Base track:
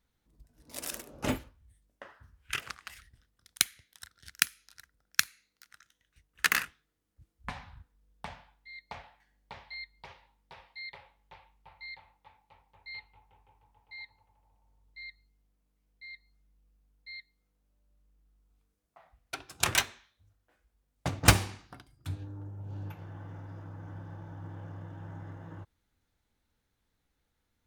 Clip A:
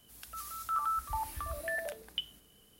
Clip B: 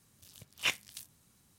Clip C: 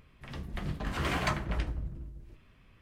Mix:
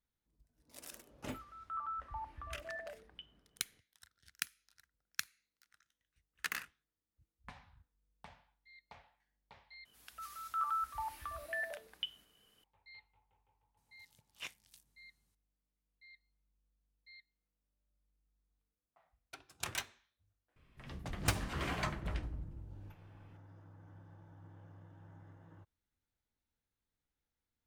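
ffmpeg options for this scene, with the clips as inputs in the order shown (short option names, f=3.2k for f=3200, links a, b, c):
-filter_complex "[1:a]asplit=2[a][b];[0:a]volume=-13dB[c];[a]lowpass=2k[d];[b]equalizer=f=1.8k:w=0.33:g=10[e];[c]asplit=2[f][g];[f]atrim=end=9.854[h];[e]atrim=end=2.79,asetpts=PTS-STARTPTS,volume=-12.5dB[i];[g]atrim=start=12.636[j];[d]atrim=end=2.79,asetpts=PTS-STARTPTS,volume=-8dB,afade=t=in:d=0.004:c=hsin,afade=t=out:st=2.786:d=0.004:c=hsin,adelay=1010[k];[2:a]atrim=end=1.58,asetpts=PTS-STARTPTS,volume=-15.5dB,afade=t=in:d=0.004:c=hsin,afade=t=out:st=1.576:d=0.004:c=hsin,adelay=13770[l];[3:a]atrim=end=2.81,asetpts=PTS-STARTPTS,volume=-7dB,afade=t=in:d=0.004:c=hsin,afade=t=out:st=2.806:d=0.004:c=hsin,adelay=20560[m];[h][i]acrossfade=d=0.004:c1=hsin:c2=hsin[n];[n][j]acrossfade=d=0.004:c1=hsin:c2=hsin[o];[o][k][l][m]amix=inputs=4:normalize=0"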